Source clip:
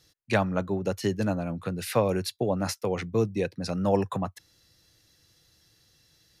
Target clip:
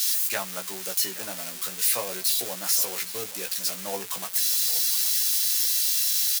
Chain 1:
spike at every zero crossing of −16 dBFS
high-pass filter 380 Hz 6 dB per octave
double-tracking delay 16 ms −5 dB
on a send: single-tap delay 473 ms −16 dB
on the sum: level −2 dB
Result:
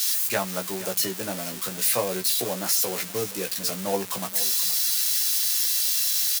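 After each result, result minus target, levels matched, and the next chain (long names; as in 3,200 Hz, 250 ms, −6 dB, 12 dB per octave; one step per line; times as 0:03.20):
echo 347 ms early; 500 Hz band +7.0 dB
spike at every zero crossing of −16 dBFS
high-pass filter 380 Hz 6 dB per octave
double-tracking delay 16 ms −5 dB
on a send: single-tap delay 820 ms −16 dB
on the sum: level −2 dB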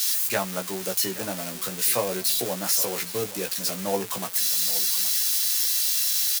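500 Hz band +7.0 dB
spike at every zero crossing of −16 dBFS
high-pass filter 1,400 Hz 6 dB per octave
double-tracking delay 16 ms −5 dB
on a send: single-tap delay 820 ms −16 dB
on the sum: level −2 dB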